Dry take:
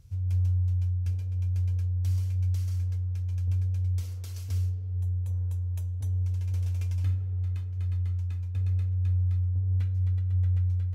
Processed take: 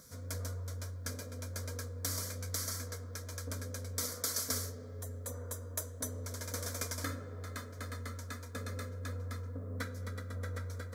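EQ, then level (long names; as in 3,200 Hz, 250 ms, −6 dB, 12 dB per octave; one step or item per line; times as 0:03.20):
high-pass filter 310 Hz 12 dB per octave
phaser with its sweep stopped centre 550 Hz, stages 8
+17.5 dB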